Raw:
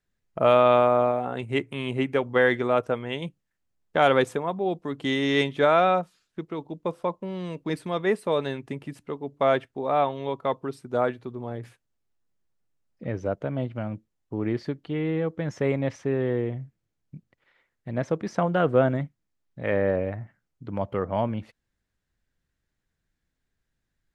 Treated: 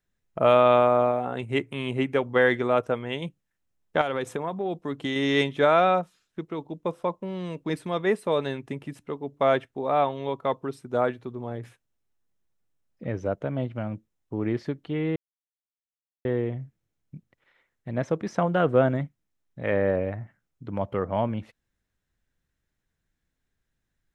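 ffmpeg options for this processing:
-filter_complex "[0:a]asettb=1/sr,asplit=3[a][b][c];[a]atrim=end=4.014[d];[b]atrim=start=4.01:end=5.16,asetpts=PTS-STARTPTS,afade=t=in:d=0.004:c=qsin,afade=t=out:st=1.146:d=0.004:c=qsin,acompressor=threshold=-23dB:ratio=12:attack=3.2:release=140:knee=1:detection=peak[e];[c]atrim=start=5.156[f];[d][e]acrossfade=d=0.004:c1=hsin:c2=qsin[g];[g][f]acrossfade=d=0.004:c1=qsin:c2=hsin,asplit=3[h][i][j];[h]atrim=end=15.16,asetpts=PTS-STARTPTS,afade=t=out:st=15.156:d=0.004:c=hsin[k];[i]atrim=start=15.16:end=16.25,asetpts=PTS-STARTPTS,volume=0[l];[j]atrim=start=16.25,asetpts=PTS-STARTPTS,afade=t=in:d=0.004:c=hsin[m];[k][l][m]concat=n=3:v=0:a=1,bandreject=f=4.6k:w=13"

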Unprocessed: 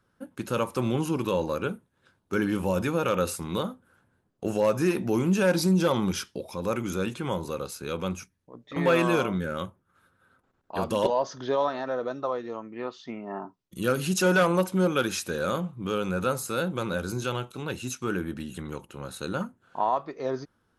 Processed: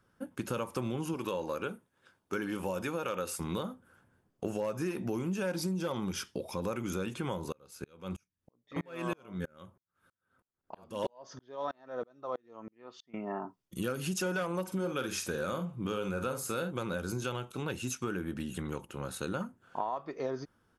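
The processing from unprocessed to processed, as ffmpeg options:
-filter_complex "[0:a]asettb=1/sr,asplit=3[a][b][c];[a]atrim=end=1.144[d];[b]atrim=start=1.14:end=3.4,asetpts=PTS-STARTPTS,afade=t=in:d=0.004:c=qsin,afade=t=out:st=2.256:d=0.004:c=qsin,lowshelf=f=210:g=-10[e];[c]atrim=start=3.396[f];[d][e]acrossfade=d=0.004:c1=hsin:c2=qsin[g];[g][f]acrossfade=d=0.004:c1=qsin:c2=hsin,asettb=1/sr,asplit=3[h][i][j];[h]atrim=end=7.524[k];[i]atrim=start=7.52:end=13.14,asetpts=PTS-STARTPTS,afade=t=in:d=0.004:c=qsin,afade=t=out:st=5.616:d=0.004:c=qsin,aeval=exprs='val(0)*pow(10,-37*if(lt(mod(-3.1*n/s,1),2*abs(-3.1)/1000),1-mod(-3.1*n/s,1)/(2*abs(-3.1)/1000),(mod(-3.1*n/s,1)-2*abs(-3.1)/1000)/(1-2*abs(-3.1)/1000))/20)':c=same[l];[j]atrim=start=13.136[m];[k][l]acrossfade=d=0.004:c1=hsin:c2=qsin[n];[n][m]acrossfade=d=0.004:c1=qsin:c2=hsin,asplit=3[o][p][q];[o]afade=t=out:st=14.67:d=0.02[r];[p]asplit=2[s][t];[t]adelay=46,volume=-8.5dB[u];[s][u]amix=inputs=2:normalize=0,afade=t=in:st=14.67:d=0.02,afade=t=out:st=16.7:d=0.02[v];[q]afade=t=in:st=16.7:d=0.02[w];[r][v][w]amix=inputs=3:normalize=0,acompressor=threshold=-31dB:ratio=6,bandreject=f=4k:w=12"

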